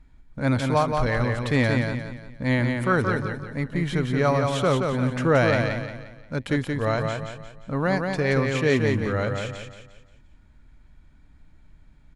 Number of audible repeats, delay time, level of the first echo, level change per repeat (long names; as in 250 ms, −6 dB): 4, 176 ms, −4.5 dB, −8.0 dB